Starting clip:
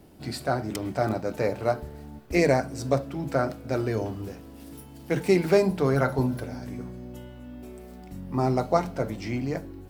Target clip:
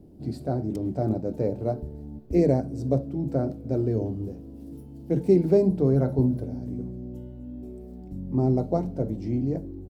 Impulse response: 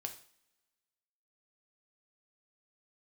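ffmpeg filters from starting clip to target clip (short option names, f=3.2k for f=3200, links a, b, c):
-af "firequalizer=gain_entry='entry(310,0);entry(1200,-22);entry(2200,-23);entry(4100,-18)':delay=0.05:min_phase=1,volume=3.5dB"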